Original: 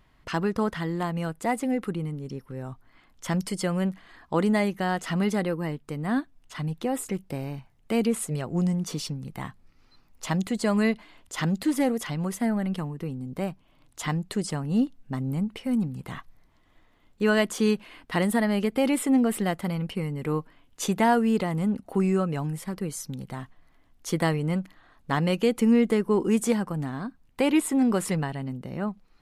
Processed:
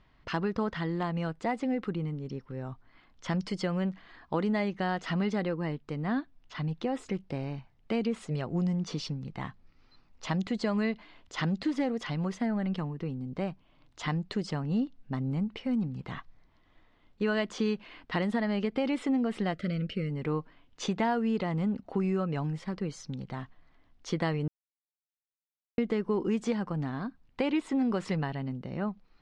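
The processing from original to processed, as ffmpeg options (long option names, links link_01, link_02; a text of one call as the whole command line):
ffmpeg -i in.wav -filter_complex "[0:a]asettb=1/sr,asplit=3[link_01][link_02][link_03];[link_01]atrim=end=6.044[link_04];[link_02]atrim=start=6.04:end=6.69,asetpts=PTS-STARTPTS,afade=type=in:duration=0.004:curve=qsin,afade=type=out:start_time=0.646:duration=0.004:curve=qsin,lowpass=frequency=7200:width=0.5412,lowpass=frequency=7200:width=1.3066[link_05];[link_03]atrim=start=6.686[link_06];[link_04][link_05]acrossfade=duration=0.004:curve1=hsin:curve2=qsin[link_07];[link_07][link_06]acrossfade=duration=0.004:curve1=qsin:curve2=hsin,asplit=3[link_08][link_09][link_10];[link_08]afade=type=out:start_time=19.52:duration=0.02[link_11];[link_09]asuperstop=centerf=900:order=12:qfactor=1.6,afade=type=in:start_time=19.52:duration=0.02,afade=type=out:start_time=20.09:duration=0.02[link_12];[link_10]afade=type=in:start_time=20.09:duration=0.02[link_13];[link_11][link_12][link_13]amix=inputs=3:normalize=0,asplit=3[link_14][link_15][link_16];[link_14]atrim=end=24.48,asetpts=PTS-STARTPTS,afade=type=out:start_time=24.476:duration=0.004:curve=hsin[link_17];[link_15]atrim=start=24.48:end=25.78,asetpts=PTS-STARTPTS,volume=0[link_18];[link_16]atrim=start=25.78,asetpts=PTS-STARTPTS,afade=type=in:duration=0.004:curve=hsin[link_19];[link_17][link_18][link_19]concat=n=3:v=0:a=1,lowpass=frequency=5400:width=0.5412,lowpass=frequency=5400:width=1.3066,acompressor=threshold=-24dB:ratio=3,volume=-2dB" out.wav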